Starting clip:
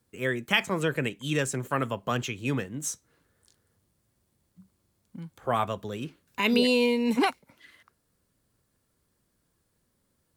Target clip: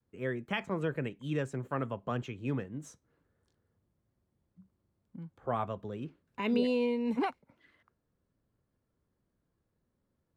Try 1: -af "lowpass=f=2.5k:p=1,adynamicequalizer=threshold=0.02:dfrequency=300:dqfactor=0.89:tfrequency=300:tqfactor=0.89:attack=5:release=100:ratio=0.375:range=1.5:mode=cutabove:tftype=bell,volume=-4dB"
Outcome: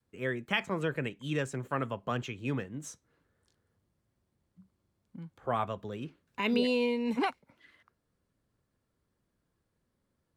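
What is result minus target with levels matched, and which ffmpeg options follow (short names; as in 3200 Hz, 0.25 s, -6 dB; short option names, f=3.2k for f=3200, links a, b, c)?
2000 Hz band +3.5 dB
-af "lowpass=f=950:p=1,adynamicequalizer=threshold=0.02:dfrequency=300:dqfactor=0.89:tfrequency=300:tqfactor=0.89:attack=5:release=100:ratio=0.375:range=1.5:mode=cutabove:tftype=bell,volume=-4dB"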